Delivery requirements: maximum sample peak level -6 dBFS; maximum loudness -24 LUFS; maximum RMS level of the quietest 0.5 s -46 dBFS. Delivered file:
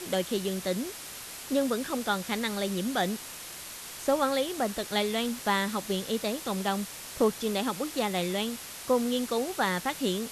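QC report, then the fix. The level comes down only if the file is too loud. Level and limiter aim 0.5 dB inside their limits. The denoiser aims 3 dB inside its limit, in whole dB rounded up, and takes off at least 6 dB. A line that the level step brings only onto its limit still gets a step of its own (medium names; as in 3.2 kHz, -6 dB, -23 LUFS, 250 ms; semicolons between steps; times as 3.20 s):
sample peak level -13.0 dBFS: pass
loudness -30.0 LUFS: pass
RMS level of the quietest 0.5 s -42 dBFS: fail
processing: noise reduction 7 dB, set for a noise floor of -42 dBFS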